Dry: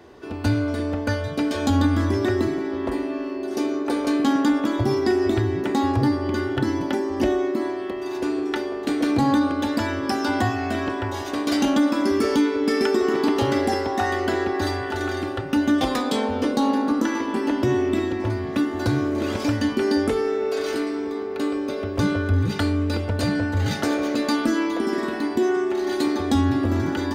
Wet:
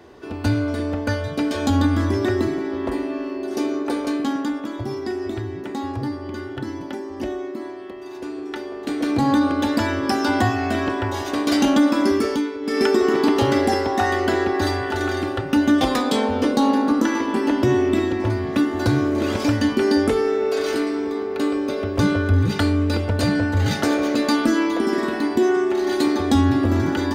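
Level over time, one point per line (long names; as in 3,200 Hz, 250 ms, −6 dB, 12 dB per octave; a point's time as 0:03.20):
0:03.81 +1 dB
0:04.62 −6.5 dB
0:08.32 −6.5 dB
0:09.54 +3 dB
0:12.09 +3 dB
0:12.60 −7.5 dB
0:12.82 +3 dB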